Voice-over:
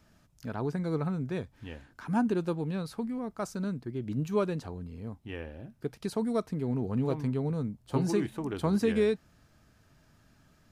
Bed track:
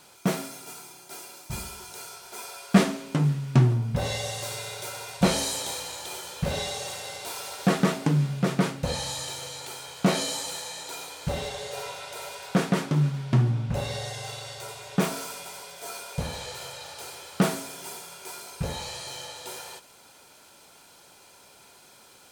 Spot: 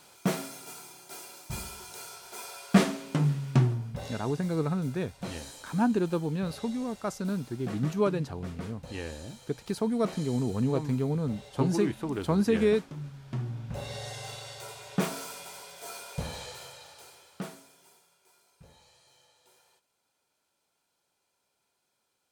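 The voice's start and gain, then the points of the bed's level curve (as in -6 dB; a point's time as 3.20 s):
3.65 s, +2.0 dB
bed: 3.50 s -2.5 dB
4.36 s -17 dB
12.99 s -17 dB
14.13 s -4 dB
16.41 s -4 dB
18.22 s -25 dB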